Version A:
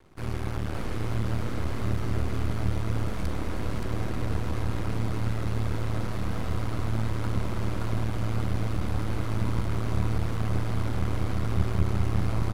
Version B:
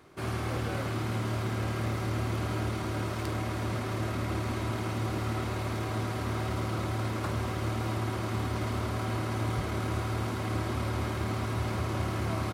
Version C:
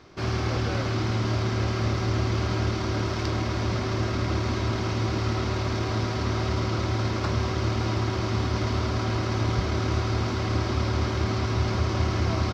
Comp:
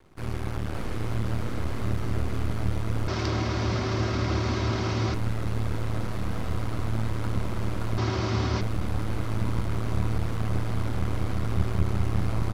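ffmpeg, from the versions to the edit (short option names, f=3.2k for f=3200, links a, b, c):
-filter_complex "[2:a]asplit=2[a][b];[0:a]asplit=3[c][d][e];[c]atrim=end=3.082[f];[a]atrim=start=3.078:end=5.142[g];[d]atrim=start=5.138:end=7.982[h];[b]atrim=start=7.978:end=8.612[i];[e]atrim=start=8.608[j];[f][g]acrossfade=d=0.004:c1=hsin:c2=hsin[k];[k][h]acrossfade=d=0.004:c1=hsin:c2=hsin[l];[l][i]acrossfade=d=0.004:c1=hsin:c2=hsin[m];[m][j]acrossfade=d=0.004:c1=hsin:c2=hsin"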